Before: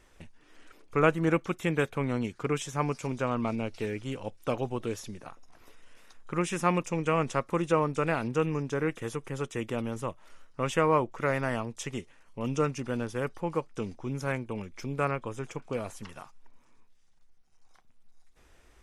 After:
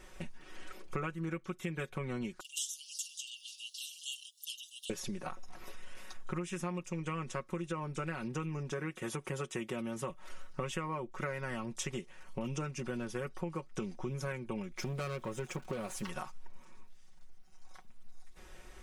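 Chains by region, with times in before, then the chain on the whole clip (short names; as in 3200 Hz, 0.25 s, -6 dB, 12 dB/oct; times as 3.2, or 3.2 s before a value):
2.4–4.9 Chebyshev high-pass 2800 Hz, order 10 + high shelf 6000 Hz +9 dB
8.72–10.1 HPF 110 Hz 6 dB/oct + bell 9600 Hz +2 dB 0.36 oct
14.72–16.09 sample gate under -55 dBFS + tube stage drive 32 dB, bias 0.3
whole clip: comb 5.4 ms, depth 74%; dynamic EQ 730 Hz, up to -5 dB, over -38 dBFS, Q 1.4; compressor 12:1, threshold -39 dBFS; gain +4.5 dB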